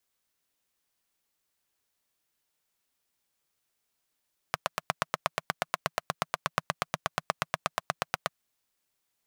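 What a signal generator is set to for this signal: single-cylinder engine model, steady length 3.75 s, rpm 1000, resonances 160/680/1100 Hz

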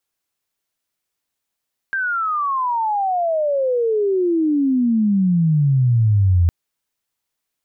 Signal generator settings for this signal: sweep logarithmic 1.6 kHz -> 83 Hz -18.5 dBFS -> -11 dBFS 4.56 s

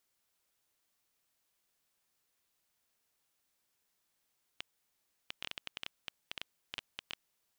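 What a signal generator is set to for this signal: random clicks 7 per s -21.5 dBFS 3.02 s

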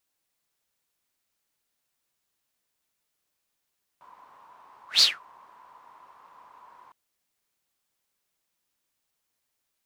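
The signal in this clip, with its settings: whoosh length 2.91 s, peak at 1.00 s, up 0.14 s, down 0.21 s, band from 1 kHz, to 4.6 kHz, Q 9.2, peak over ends 36.5 dB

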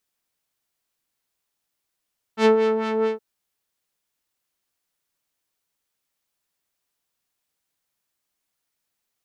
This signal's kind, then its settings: synth patch with filter wobble A4, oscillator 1 triangle, interval 0 st, oscillator 2 level -2 dB, sub -10 dB, filter lowpass, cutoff 1.3 kHz, Q 0.75, filter envelope 1 oct, attack 85 ms, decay 0.11 s, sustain -9 dB, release 0.15 s, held 0.67 s, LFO 4.5 Hz, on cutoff 1.1 oct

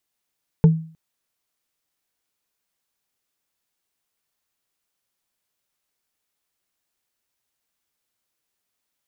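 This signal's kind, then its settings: wood hit bar, length 0.31 s, lowest mode 161 Hz, decay 0.43 s, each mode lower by 10 dB, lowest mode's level -6 dB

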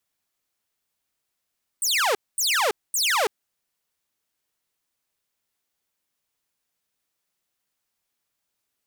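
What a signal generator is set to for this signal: burst of laser zaps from 9.2 kHz, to 380 Hz, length 0.33 s saw, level -16.5 dB, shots 3, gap 0.23 s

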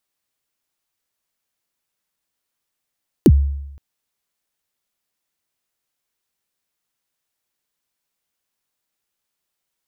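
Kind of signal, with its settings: kick drum length 0.52 s, from 420 Hz, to 70 Hz, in 50 ms, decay 0.90 s, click on, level -4 dB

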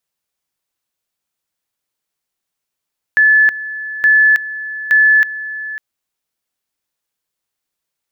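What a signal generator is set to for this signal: two-level tone 1.73 kHz -6.5 dBFS, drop 15.5 dB, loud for 0.32 s, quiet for 0.55 s, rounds 3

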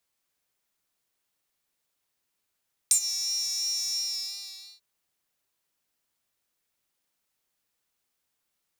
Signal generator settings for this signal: synth patch with vibrato G5, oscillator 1 square, interval +12 st, oscillator 2 level -18 dB, sub 0 dB, filter highpass, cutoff 4.3 kHz, Q 9.9, filter envelope 1 oct, filter decay 0.13 s, attack 2.6 ms, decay 0.08 s, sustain -16 dB, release 0.91 s, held 0.98 s, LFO 2.9 Hz, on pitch 33 cents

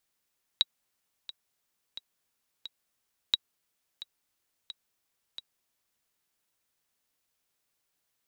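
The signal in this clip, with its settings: metronome 88 bpm, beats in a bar 4, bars 2, 3.85 kHz, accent 17 dB -9.5 dBFS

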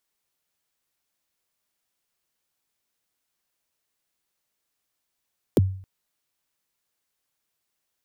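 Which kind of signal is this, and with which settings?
kick drum length 0.27 s, from 530 Hz, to 95 Hz, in 25 ms, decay 0.51 s, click on, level -11.5 dB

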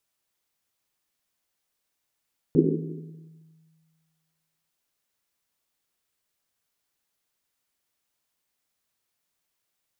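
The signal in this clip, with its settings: Risset drum length 2.15 s, pitch 160 Hz, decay 1.92 s, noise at 330 Hz, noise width 200 Hz, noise 60%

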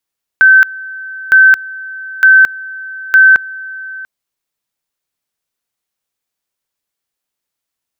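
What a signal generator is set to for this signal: two-level tone 1.54 kHz -2 dBFS, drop 21 dB, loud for 0.22 s, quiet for 0.69 s, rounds 4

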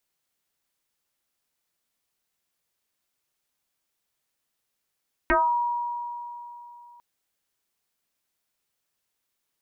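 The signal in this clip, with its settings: FM tone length 1.70 s, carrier 957 Hz, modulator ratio 0.32, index 4.3, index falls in 0.33 s exponential, decay 3.20 s, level -16.5 dB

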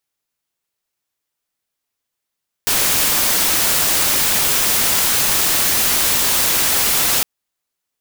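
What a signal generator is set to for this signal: noise white, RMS -16 dBFS 4.56 s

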